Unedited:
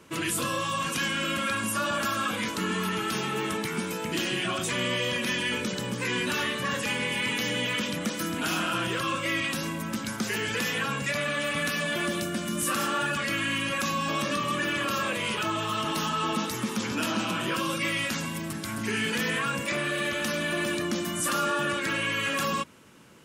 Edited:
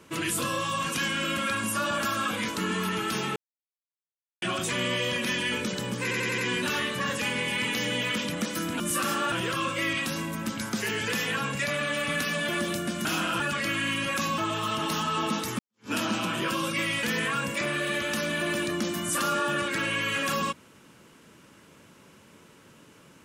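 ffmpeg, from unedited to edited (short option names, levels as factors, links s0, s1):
-filter_complex "[0:a]asplit=14[s0][s1][s2][s3][s4][s5][s6][s7][s8][s9][s10][s11][s12][s13];[s0]atrim=end=3.36,asetpts=PTS-STARTPTS,afade=t=out:st=3.356:d=0.004:c=hsin[s14];[s1]atrim=start=3.36:end=4.42,asetpts=PTS-STARTPTS,volume=0[s15];[s2]atrim=start=4.42:end=6.112,asetpts=PTS-STARTPTS,afade=t=in:d=0.004:c=hsin[s16];[s3]atrim=start=6.018:end=6.112[s17];[s4]atrim=start=6.018:end=6.112[s18];[s5]atrim=start=6.018:end=6.112[s19];[s6]atrim=start=6.018:end=8.442[s20];[s7]atrim=start=12.518:end=13.042[s21];[s8]atrim=start=8.788:end=12.522[s22];[s9]atrim=start=8.438:end=8.792[s23];[s10]atrim=start=13.038:end=14.022[s24];[s11]atrim=start=15.438:end=16.65,asetpts=PTS-STARTPTS,afade=t=out:st=1.208:d=0.004:c=hsin[s25];[s12]atrim=start=16.65:end=18.092,asetpts=PTS-STARTPTS,afade=t=in:d=0.32:c=exp[s26];[s13]atrim=start=19.138[s27];[s14][s15][s16]concat=n=3:v=0:a=1[s28];[s28][s17]acrossfade=d=0.004:c1=hsin:c2=hsin[s29];[s29][s18]acrossfade=d=0.004:c1=hsin:c2=hsin[s30];[s30][s19]acrossfade=d=0.004:c1=hsin:c2=hsin[s31];[s31][s20]acrossfade=d=0.004:c1=hsin:c2=hsin[s32];[s32][s21]acrossfade=d=0.004:c1=hsin:c2=hsin[s33];[s33][s22]acrossfade=d=0.004:c1=hsin:c2=hsin[s34];[s34][s23]acrossfade=d=0.004:c1=hsin:c2=hsin[s35];[s35][s24]acrossfade=d=0.004:c1=hsin:c2=hsin[s36];[s25][s26]concat=n=2:v=0:a=1[s37];[s36][s37]acrossfade=d=0.004:c1=hsin:c2=hsin[s38];[s38][s27]acrossfade=d=0.004:c1=hsin:c2=hsin"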